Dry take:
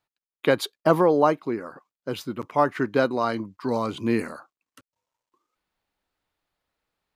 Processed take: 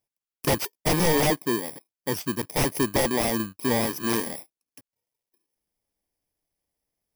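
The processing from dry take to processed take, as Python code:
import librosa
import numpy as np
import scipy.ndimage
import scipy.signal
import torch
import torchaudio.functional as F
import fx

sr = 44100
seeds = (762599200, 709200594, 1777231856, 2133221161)

y = fx.bit_reversed(x, sr, seeds[0], block=32)
y = (np.mod(10.0 ** (14.0 / 20.0) * y + 1.0, 2.0) - 1.0) / 10.0 ** (14.0 / 20.0)
y = fx.leveller(y, sr, passes=1)
y = fx.highpass(y, sr, hz=330.0, slope=6, at=(3.86, 4.27))
y = fx.slew_limit(y, sr, full_power_hz=490.0)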